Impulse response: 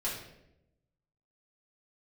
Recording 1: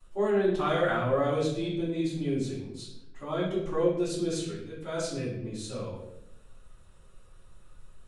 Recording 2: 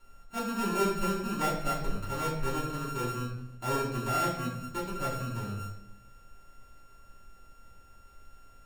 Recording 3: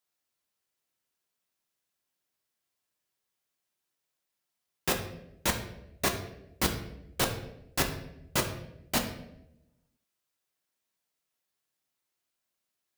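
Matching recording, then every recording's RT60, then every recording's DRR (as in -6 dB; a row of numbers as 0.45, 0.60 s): 2; 0.85, 0.85, 0.85 s; -17.5, -7.5, 2.5 dB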